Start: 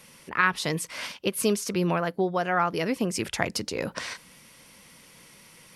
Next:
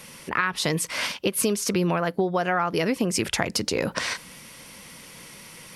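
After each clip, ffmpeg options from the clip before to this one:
ffmpeg -i in.wav -filter_complex "[0:a]asplit=2[link_01][link_02];[link_02]alimiter=limit=-17.5dB:level=0:latency=1:release=139,volume=-1.5dB[link_03];[link_01][link_03]amix=inputs=2:normalize=0,acompressor=threshold=-23dB:ratio=4,volume=2.5dB" out.wav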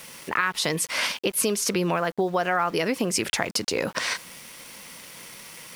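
ffmpeg -i in.wav -filter_complex "[0:a]lowshelf=frequency=230:gain=-8.5,asplit=2[link_01][link_02];[link_02]alimiter=limit=-18.5dB:level=0:latency=1:release=221,volume=-1dB[link_03];[link_01][link_03]amix=inputs=2:normalize=0,aeval=exprs='val(0)*gte(abs(val(0)),0.0106)':channel_layout=same,volume=-2.5dB" out.wav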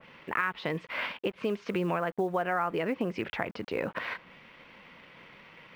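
ffmpeg -i in.wav -af "lowpass=frequency=2900:width=0.5412,lowpass=frequency=2900:width=1.3066,acrusher=bits=8:mode=log:mix=0:aa=0.000001,adynamicequalizer=threshold=0.0126:dfrequency=1800:dqfactor=0.7:tfrequency=1800:tqfactor=0.7:attack=5:release=100:ratio=0.375:range=2:mode=cutabove:tftype=highshelf,volume=-5dB" out.wav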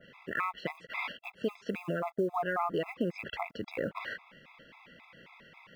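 ffmpeg -i in.wav -af "afftfilt=real='re*gt(sin(2*PI*3.7*pts/sr)*(1-2*mod(floor(b*sr/1024/670),2)),0)':imag='im*gt(sin(2*PI*3.7*pts/sr)*(1-2*mod(floor(b*sr/1024/670),2)),0)':win_size=1024:overlap=0.75" out.wav

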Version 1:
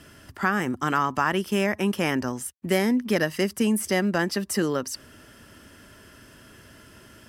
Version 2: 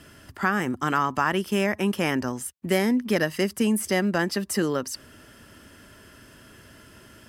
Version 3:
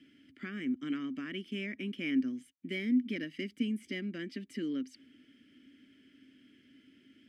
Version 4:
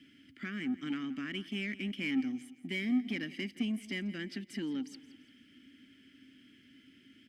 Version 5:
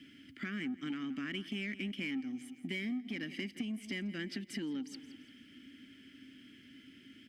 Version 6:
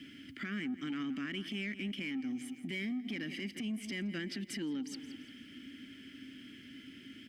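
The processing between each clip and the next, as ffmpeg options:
ffmpeg -i in.wav -af "bandreject=frequency=5700:width=26" out.wav
ffmpeg -i in.wav -filter_complex "[0:a]asplit=3[link_01][link_02][link_03];[link_01]bandpass=frequency=270:width_type=q:width=8,volume=0dB[link_04];[link_02]bandpass=frequency=2290:width_type=q:width=8,volume=-6dB[link_05];[link_03]bandpass=frequency=3010:width_type=q:width=8,volume=-9dB[link_06];[link_04][link_05][link_06]amix=inputs=3:normalize=0" out.wav
ffmpeg -i in.wav -filter_complex "[0:a]equalizer=frequency=500:width_type=o:width=2:gain=-7,asplit=2[link_01][link_02];[link_02]asoftclip=type=tanh:threshold=-39dB,volume=-3.5dB[link_03];[link_01][link_03]amix=inputs=2:normalize=0,aecho=1:1:170|340|510:0.133|0.0533|0.0213" out.wav
ffmpeg -i in.wav -af "acompressor=threshold=-40dB:ratio=5,volume=3.5dB" out.wav
ffmpeg -i in.wav -af "alimiter=level_in=13dB:limit=-24dB:level=0:latency=1:release=67,volume=-13dB,volume=5dB" out.wav

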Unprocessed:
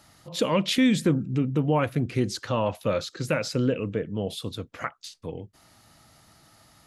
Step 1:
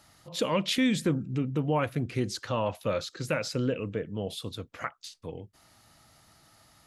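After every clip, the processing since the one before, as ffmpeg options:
ffmpeg -i in.wav -af "equalizer=frequency=220:width=0.57:gain=-2.5,volume=-2.5dB" out.wav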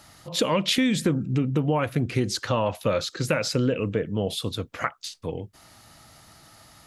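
ffmpeg -i in.wav -af "acompressor=threshold=-27dB:ratio=4,volume=8dB" out.wav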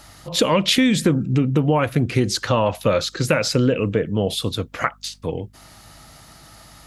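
ffmpeg -i in.wav -af "aeval=exprs='val(0)+0.00141*(sin(2*PI*50*n/s)+sin(2*PI*2*50*n/s)/2+sin(2*PI*3*50*n/s)/3+sin(2*PI*4*50*n/s)/4+sin(2*PI*5*50*n/s)/5)':channel_layout=same,volume=5.5dB" out.wav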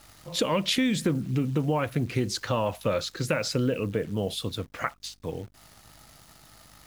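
ffmpeg -i in.wav -af "acrusher=bits=8:dc=4:mix=0:aa=0.000001,volume=-8dB" out.wav

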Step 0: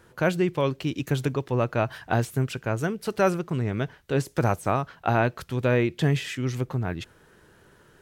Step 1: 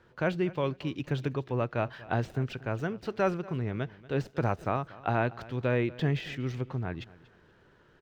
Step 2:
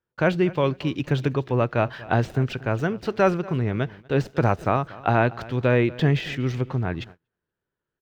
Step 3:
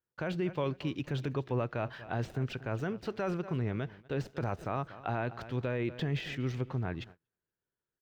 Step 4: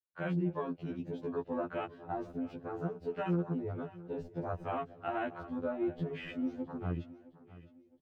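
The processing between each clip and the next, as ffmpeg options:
ffmpeg -i in.wav -filter_complex "[0:a]acrossover=split=770|5400[link_01][link_02][link_03];[link_03]acrusher=samples=40:mix=1:aa=0.000001[link_04];[link_01][link_02][link_04]amix=inputs=3:normalize=0,aecho=1:1:237|474:0.1|0.025,volume=-5.5dB" out.wav
ffmpeg -i in.wav -af "agate=range=-33dB:threshold=-48dB:ratio=16:detection=peak,volume=8dB" out.wav
ffmpeg -i in.wav -af "alimiter=limit=-14.5dB:level=0:latency=1:release=26,volume=-8.5dB" out.wav
ffmpeg -i in.wav -af "afwtdn=0.01,aecho=1:1:663|1326|1989:0.126|0.0504|0.0201,afftfilt=real='re*2*eq(mod(b,4),0)':imag='im*2*eq(mod(b,4),0)':win_size=2048:overlap=0.75,volume=1.5dB" out.wav

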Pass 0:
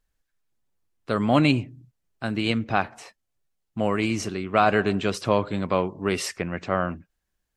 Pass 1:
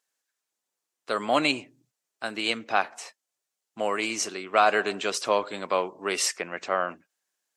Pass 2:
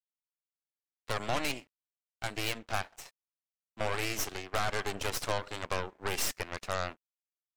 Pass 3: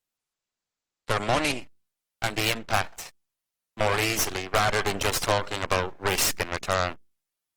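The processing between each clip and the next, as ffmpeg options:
ffmpeg -i in.wav -af "highpass=460,equalizer=frequency=7100:width=0.95:gain=7" out.wav
ffmpeg -i in.wav -af "aeval=exprs='sgn(val(0))*max(abs(val(0))-0.00266,0)':channel_layout=same,acompressor=threshold=-23dB:ratio=6,aeval=exprs='0.2*(cos(1*acos(clip(val(0)/0.2,-1,1)))-cos(1*PI/2))+0.0562*(cos(8*acos(clip(val(0)/0.2,-1,1)))-cos(8*PI/2))':channel_layout=same,volume=-7dB" out.wav
ffmpeg -i in.wav -af "volume=9dB" -ar 48000 -c:a libopus -b:a 20k out.opus

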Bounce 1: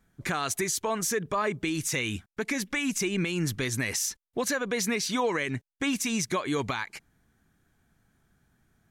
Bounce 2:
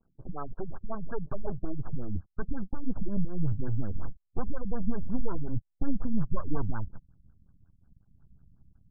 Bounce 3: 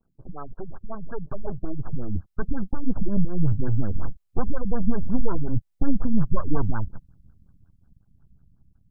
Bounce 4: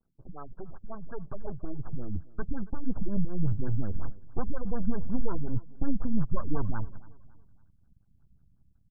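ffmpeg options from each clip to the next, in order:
ffmpeg -i in.wav -af "aeval=exprs='max(val(0),0)':channel_layout=same,asubboost=boost=6.5:cutoff=170,afftfilt=real='re*lt(b*sr/1024,250*pow(1700/250,0.5+0.5*sin(2*PI*5.5*pts/sr)))':imag='im*lt(b*sr/1024,250*pow(1700/250,0.5+0.5*sin(2*PI*5.5*pts/sr)))':win_size=1024:overlap=0.75" out.wav
ffmpeg -i in.wav -af "dynaudnorm=framelen=530:gausssize=7:maxgain=7dB" out.wav
ffmpeg -i in.wav -af "aecho=1:1:278|556|834:0.0891|0.0339|0.0129,volume=-6dB" out.wav

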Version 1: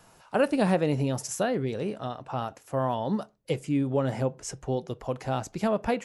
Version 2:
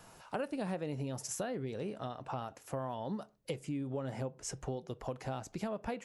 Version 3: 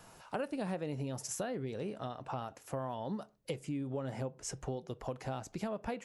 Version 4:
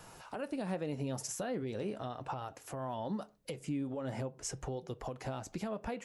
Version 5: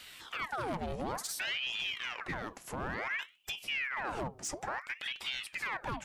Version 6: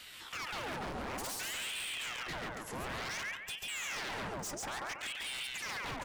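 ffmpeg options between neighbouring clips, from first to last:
ffmpeg -i in.wav -af "acompressor=threshold=-37dB:ratio=4" out.wav
ffmpeg -i in.wav -af anull out.wav
ffmpeg -i in.wav -af "alimiter=level_in=7.5dB:limit=-24dB:level=0:latency=1:release=195,volume=-7.5dB,flanger=delay=2.1:depth=2.3:regen=-75:speed=0.42:shape=triangular,volume=7.5dB" out.wav
ffmpeg -i in.wav -af "volume=35dB,asoftclip=hard,volume=-35dB,aeval=exprs='val(0)*sin(2*PI*1600*n/s+1600*0.85/0.57*sin(2*PI*0.57*n/s))':channel_layout=same,volume=5.5dB" out.wav
ffmpeg -i in.wav -filter_complex "[0:a]asplit=2[link_01][link_02];[link_02]aecho=0:1:139|278|417|556|695:0.631|0.227|0.0818|0.0294|0.0106[link_03];[link_01][link_03]amix=inputs=2:normalize=0,aeval=exprs='0.0188*(abs(mod(val(0)/0.0188+3,4)-2)-1)':channel_layout=same" out.wav

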